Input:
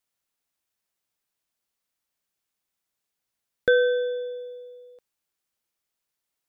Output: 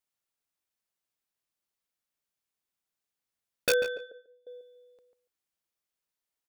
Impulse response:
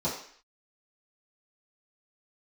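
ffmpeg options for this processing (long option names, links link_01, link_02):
-filter_complex "[0:a]aeval=exprs='(mod(3.76*val(0)+1,2)-1)/3.76':channel_layout=same,asettb=1/sr,asplit=3[link_01][link_02][link_03];[link_01]atrim=end=3.974[link_04];[link_02]atrim=start=3.97:end=4.47,asetpts=PTS-STARTPTS,afade=type=in:duration=0.004:curve=qsin,afade=type=out:start_time=0.496:duration=0.004:curve=qsin,agate=range=-24dB:threshold=-26dB:ratio=16:detection=peak[link_05];[link_03]atrim=start=4.466[link_06];[link_04][link_05]acrossfade=duration=0.004:curve1=hsin:curve2=qsin[link_07];[link_07][link_06]acrossfade=duration=0.004:curve1=qsin:curve2=hsin,asplit=2[link_08][link_09];[link_09]adelay=143,lowpass=frequency=2200:poles=1,volume=-8.5dB,asplit=2[link_10][link_11];[link_11]adelay=143,lowpass=frequency=2200:poles=1,volume=0.16[link_12];[link_08][link_10][link_12]amix=inputs=3:normalize=0,volume=-6dB"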